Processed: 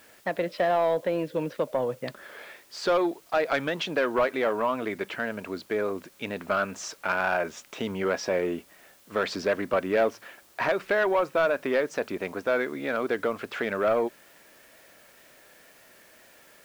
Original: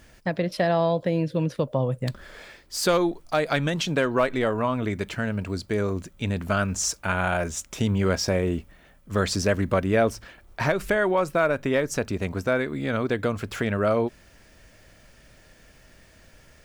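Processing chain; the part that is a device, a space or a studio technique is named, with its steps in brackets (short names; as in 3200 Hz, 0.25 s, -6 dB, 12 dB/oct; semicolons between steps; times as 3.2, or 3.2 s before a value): tape answering machine (BPF 350–3100 Hz; soft clip -17 dBFS, distortion -16 dB; wow and flutter; white noise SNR 30 dB); gain +1.5 dB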